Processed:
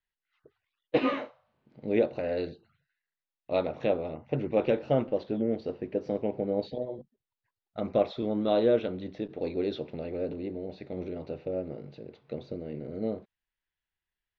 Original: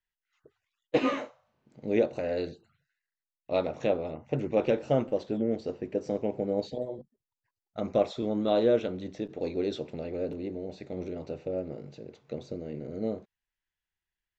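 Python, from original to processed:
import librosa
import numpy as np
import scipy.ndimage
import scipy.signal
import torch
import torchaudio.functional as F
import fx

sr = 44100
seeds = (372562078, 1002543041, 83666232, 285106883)

y = scipy.signal.sosfilt(scipy.signal.cheby2(4, 50, 10000.0, 'lowpass', fs=sr, output='sos'), x)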